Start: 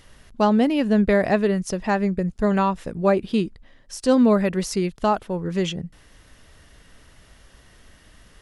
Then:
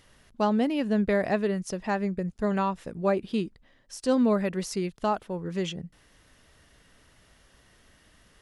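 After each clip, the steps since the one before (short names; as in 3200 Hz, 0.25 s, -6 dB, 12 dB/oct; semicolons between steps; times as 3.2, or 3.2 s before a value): low shelf 62 Hz -8 dB; gain -6 dB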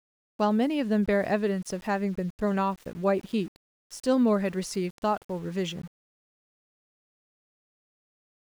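sample gate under -45.5 dBFS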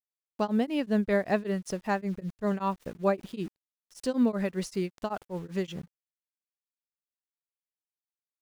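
beating tremolo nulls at 5.2 Hz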